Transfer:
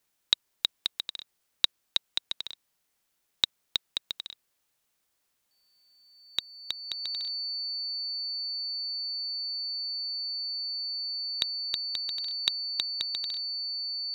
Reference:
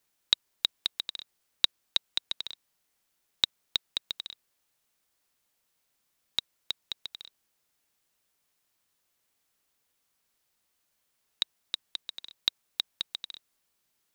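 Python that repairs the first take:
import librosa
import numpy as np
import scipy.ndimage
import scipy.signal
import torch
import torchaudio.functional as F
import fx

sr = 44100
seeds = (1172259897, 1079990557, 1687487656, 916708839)

y = fx.notch(x, sr, hz=4500.0, q=30.0)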